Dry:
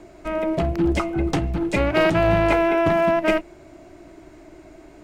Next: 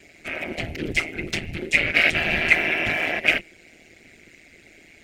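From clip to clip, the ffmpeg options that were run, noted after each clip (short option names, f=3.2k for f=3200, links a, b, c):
-af "afftfilt=real='hypot(re,im)*cos(2*PI*random(0))':imag='hypot(re,im)*sin(2*PI*random(1))':win_size=512:overlap=0.75,tremolo=f=160:d=0.75,highshelf=f=1.5k:t=q:w=3:g=12.5"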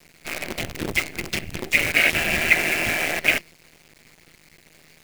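-af "acrusher=bits=5:dc=4:mix=0:aa=0.000001"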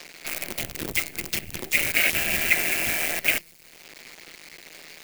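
-filter_complex "[0:a]aemphasis=mode=production:type=50kf,acrossover=split=270|5800[a][b][c];[b]acompressor=mode=upward:threshold=-25dB:ratio=2.5[d];[a][d][c]amix=inputs=3:normalize=0,volume=-6dB"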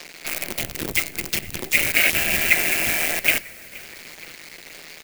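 -filter_complex "[0:a]asplit=6[a][b][c][d][e][f];[b]adelay=472,afreqshift=-55,volume=-21.5dB[g];[c]adelay=944,afreqshift=-110,volume=-25.9dB[h];[d]adelay=1416,afreqshift=-165,volume=-30.4dB[i];[e]adelay=1888,afreqshift=-220,volume=-34.8dB[j];[f]adelay=2360,afreqshift=-275,volume=-39.2dB[k];[a][g][h][i][j][k]amix=inputs=6:normalize=0,volume=3.5dB"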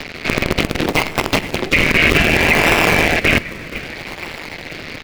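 -filter_complex "[0:a]acrossover=split=140|4700[a][b][c];[a]aeval=exprs='(mod(84.1*val(0)+1,2)-1)/84.1':c=same[d];[c]acrusher=samples=39:mix=1:aa=0.000001:lfo=1:lforange=39:lforate=0.64[e];[d][b][e]amix=inputs=3:normalize=0,alimiter=level_in=12.5dB:limit=-1dB:release=50:level=0:latency=1,volume=-1dB"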